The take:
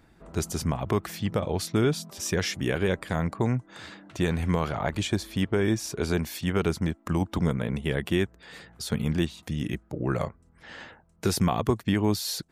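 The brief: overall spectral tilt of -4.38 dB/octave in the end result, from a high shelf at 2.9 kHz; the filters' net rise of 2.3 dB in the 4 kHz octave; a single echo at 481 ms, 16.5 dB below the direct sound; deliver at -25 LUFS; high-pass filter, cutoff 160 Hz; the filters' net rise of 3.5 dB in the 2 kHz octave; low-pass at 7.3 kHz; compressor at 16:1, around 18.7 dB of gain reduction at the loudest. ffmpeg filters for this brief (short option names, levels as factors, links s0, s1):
-af "highpass=160,lowpass=7300,equalizer=f=2000:t=o:g=5.5,highshelf=f=2900:g=-8,equalizer=f=4000:t=o:g=8,acompressor=threshold=0.0112:ratio=16,aecho=1:1:481:0.15,volume=8.91"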